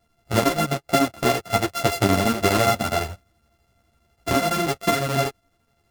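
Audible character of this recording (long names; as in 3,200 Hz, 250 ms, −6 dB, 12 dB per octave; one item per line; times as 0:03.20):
a buzz of ramps at a fixed pitch in blocks of 64 samples
chopped level 12 Hz, depth 65%, duty 80%
a shimmering, thickened sound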